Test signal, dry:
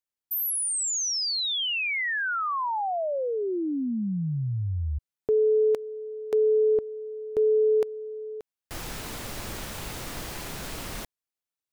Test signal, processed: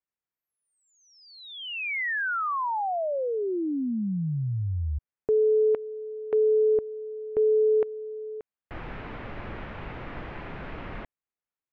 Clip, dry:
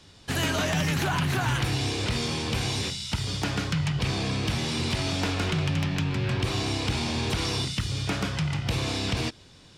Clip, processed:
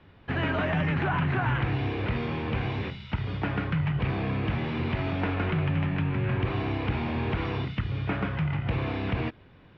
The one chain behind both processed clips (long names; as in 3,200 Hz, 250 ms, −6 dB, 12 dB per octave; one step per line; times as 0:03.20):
low-pass filter 2,400 Hz 24 dB per octave